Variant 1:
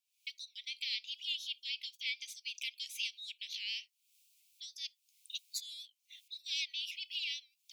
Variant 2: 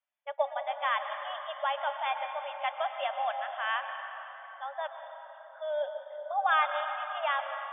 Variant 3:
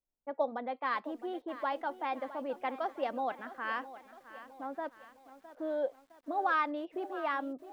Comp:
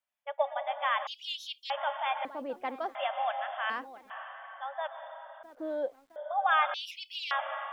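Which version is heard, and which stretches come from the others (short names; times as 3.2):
2
1.07–1.7 from 1
2.25–2.95 from 3
3.7–4.1 from 3
5.43–6.16 from 3
6.74–7.31 from 1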